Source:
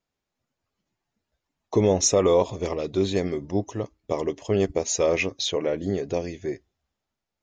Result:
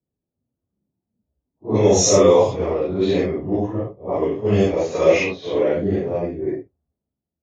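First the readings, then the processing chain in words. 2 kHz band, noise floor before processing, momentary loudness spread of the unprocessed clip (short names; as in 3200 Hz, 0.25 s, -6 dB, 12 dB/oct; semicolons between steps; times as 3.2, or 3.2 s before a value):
+5.0 dB, -85 dBFS, 12 LU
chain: phase scrambler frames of 0.2 s; HPF 59 Hz; low-pass opened by the level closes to 350 Hz, open at -16 dBFS; gain +6 dB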